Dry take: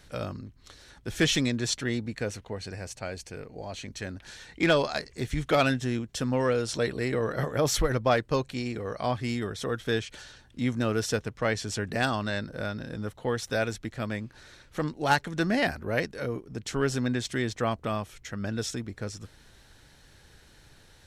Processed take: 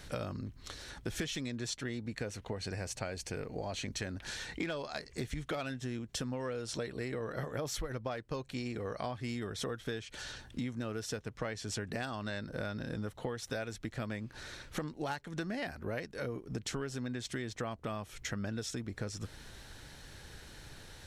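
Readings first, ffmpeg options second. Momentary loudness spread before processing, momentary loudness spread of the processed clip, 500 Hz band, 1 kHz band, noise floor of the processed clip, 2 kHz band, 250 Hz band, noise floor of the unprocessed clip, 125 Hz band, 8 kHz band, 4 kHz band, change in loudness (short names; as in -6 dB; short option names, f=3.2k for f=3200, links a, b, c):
13 LU, 7 LU, -10.5 dB, -11.5 dB, -55 dBFS, -10.5 dB, -9.0 dB, -57 dBFS, -8.5 dB, -7.0 dB, -8.5 dB, -10.0 dB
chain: -af "acompressor=threshold=-39dB:ratio=16,volume=4.5dB"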